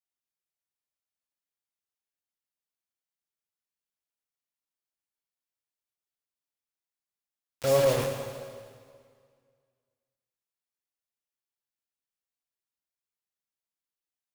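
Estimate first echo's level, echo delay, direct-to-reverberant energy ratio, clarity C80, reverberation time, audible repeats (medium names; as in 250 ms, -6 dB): no echo, no echo, 3.0 dB, 6.0 dB, 2.0 s, no echo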